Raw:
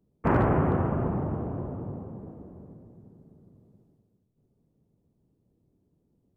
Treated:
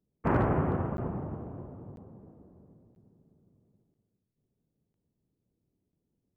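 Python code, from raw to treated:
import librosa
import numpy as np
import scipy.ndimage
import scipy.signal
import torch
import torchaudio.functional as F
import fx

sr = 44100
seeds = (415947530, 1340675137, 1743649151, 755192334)

y = fx.buffer_crackle(x, sr, first_s=0.97, period_s=0.99, block=512, kind='zero')
y = fx.upward_expand(y, sr, threshold_db=-35.0, expansion=1.5)
y = y * 10.0 ** (-2.5 / 20.0)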